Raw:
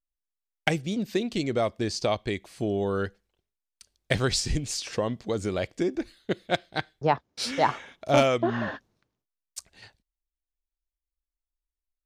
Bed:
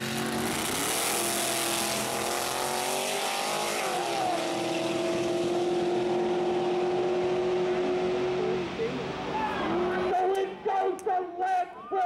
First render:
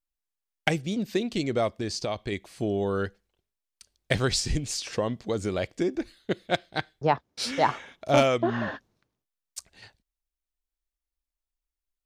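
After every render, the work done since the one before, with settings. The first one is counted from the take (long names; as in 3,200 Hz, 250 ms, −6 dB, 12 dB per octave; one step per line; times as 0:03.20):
0:01.78–0:02.32: downward compressor 2.5 to 1, threshold −27 dBFS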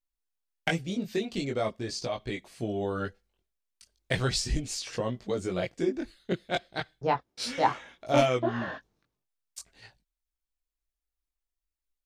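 multi-voice chorus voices 6, 0.37 Hz, delay 20 ms, depth 4.1 ms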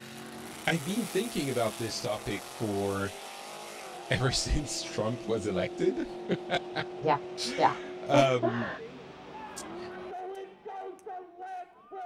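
mix in bed −13.5 dB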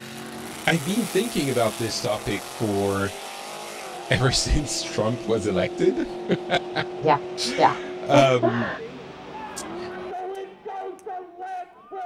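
level +7.5 dB
brickwall limiter −3 dBFS, peak gain reduction 2 dB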